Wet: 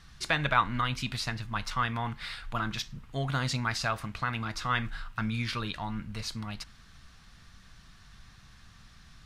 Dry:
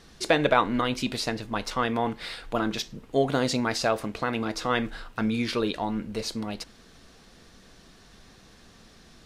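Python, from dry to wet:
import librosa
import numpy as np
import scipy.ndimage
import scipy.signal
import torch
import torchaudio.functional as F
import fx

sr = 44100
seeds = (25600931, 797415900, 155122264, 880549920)

y = fx.curve_eq(x, sr, hz=(130.0, 260.0, 450.0, 1200.0, 7800.0), db=(0, -14, -21, -3, -8))
y = y * 10.0 ** (3.0 / 20.0)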